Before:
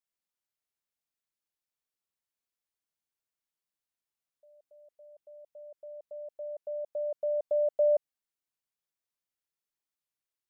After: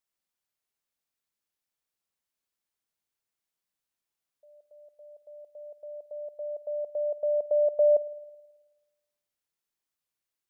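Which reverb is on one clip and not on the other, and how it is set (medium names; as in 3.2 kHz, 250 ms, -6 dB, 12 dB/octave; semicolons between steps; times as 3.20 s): spring tank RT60 1.2 s, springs 54 ms, DRR 18.5 dB; trim +3 dB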